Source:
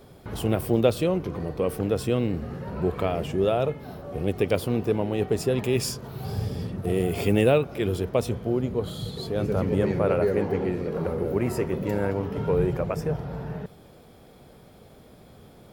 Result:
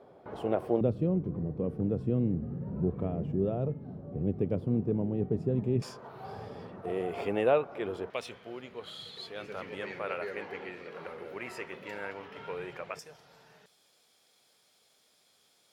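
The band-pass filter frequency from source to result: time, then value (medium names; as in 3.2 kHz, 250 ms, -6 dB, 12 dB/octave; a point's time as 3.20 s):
band-pass filter, Q 1.1
660 Hz
from 0.81 s 170 Hz
from 5.82 s 950 Hz
from 8.10 s 2.4 kHz
from 12.99 s 6.1 kHz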